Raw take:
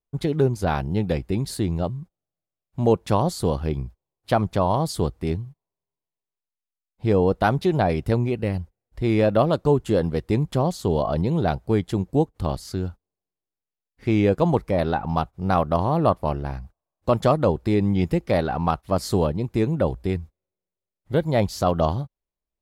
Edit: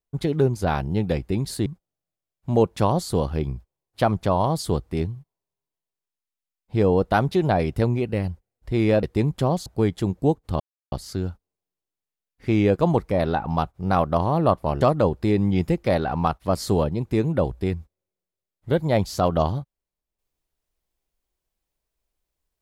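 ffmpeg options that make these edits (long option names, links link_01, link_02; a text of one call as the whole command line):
ffmpeg -i in.wav -filter_complex "[0:a]asplit=6[link_01][link_02][link_03][link_04][link_05][link_06];[link_01]atrim=end=1.662[link_07];[link_02]atrim=start=1.958:end=9.332[link_08];[link_03]atrim=start=10.168:end=10.802[link_09];[link_04]atrim=start=11.568:end=12.51,asetpts=PTS-STARTPTS,afade=type=out:start_time=0.938:duration=0.004:curve=hsin,apad=pad_dur=0.32[link_10];[link_05]atrim=start=12.51:end=16.402,asetpts=PTS-STARTPTS,afade=type=in:duration=0.004:curve=hsin[link_11];[link_06]atrim=start=17.238[link_12];[link_07][link_08]acrossfade=duration=0.004:curve1=hsin:curve2=hsin[link_13];[link_13][link_09]acrossfade=duration=0.004:curve1=hsin:curve2=hsin[link_14];[link_10][link_11]concat=n=2:v=0:a=1[link_15];[link_14][link_15]acrossfade=duration=0.004:curve1=hsin:curve2=hsin[link_16];[link_16][link_12]acrossfade=duration=0.004:curve1=hsin:curve2=hsin" out.wav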